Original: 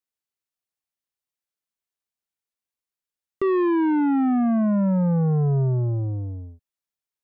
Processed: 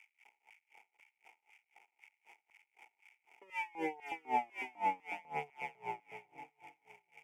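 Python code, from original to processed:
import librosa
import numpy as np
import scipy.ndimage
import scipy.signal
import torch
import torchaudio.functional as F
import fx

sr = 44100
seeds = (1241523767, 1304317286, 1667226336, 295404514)

p1 = fx.cycle_switch(x, sr, every=2, mode='muted')
p2 = p1 + 0.99 * np.pad(p1, (int(6.9 * sr / 1000.0), 0))[:len(p1)]
p3 = fx.rider(p2, sr, range_db=10, speed_s=0.5)
p4 = p2 + F.gain(torch.from_numpy(p3), -3.0).numpy()
p5 = fx.dmg_crackle(p4, sr, seeds[0], per_s=390.0, level_db=-29.0)
p6 = fx.vowel_filter(p5, sr, vowel='u')
p7 = fx.fixed_phaser(p6, sr, hz=1100.0, stages=6)
p8 = fx.filter_lfo_highpass(p7, sr, shape='square', hz=2.0, low_hz=530.0, high_hz=1800.0, q=1.2)
p9 = p8 + fx.echo_alternate(p8, sr, ms=366, hz=890.0, feedback_pct=54, wet_db=-9.5, dry=0)
p10 = p9 * 10.0 ** (-28 * (0.5 - 0.5 * np.cos(2.0 * np.pi * 3.9 * np.arange(len(p9)) / sr)) / 20.0)
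y = F.gain(torch.from_numpy(p10), 8.5).numpy()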